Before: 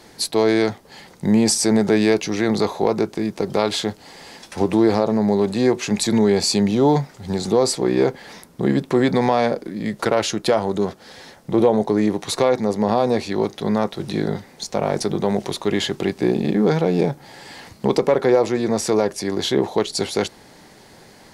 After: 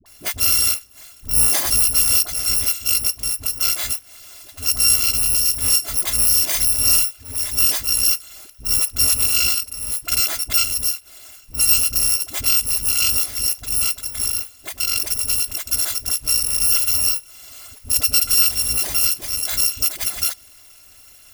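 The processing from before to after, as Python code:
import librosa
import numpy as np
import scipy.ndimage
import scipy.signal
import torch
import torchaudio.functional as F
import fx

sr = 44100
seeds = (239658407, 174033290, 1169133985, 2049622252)

y = fx.bit_reversed(x, sr, seeds[0], block=256)
y = fx.dispersion(y, sr, late='highs', ms=59.0, hz=450.0)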